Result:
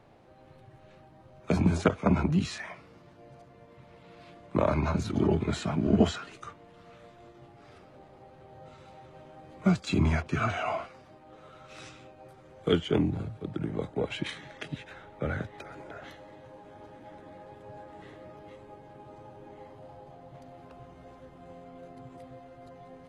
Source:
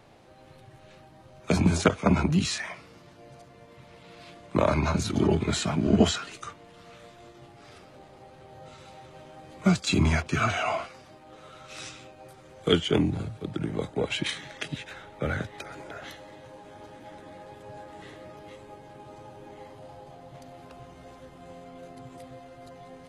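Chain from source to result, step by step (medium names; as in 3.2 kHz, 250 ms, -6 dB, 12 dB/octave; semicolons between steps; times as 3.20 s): treble shelf 2.9 kHz -10.5 dB; trim -2 dB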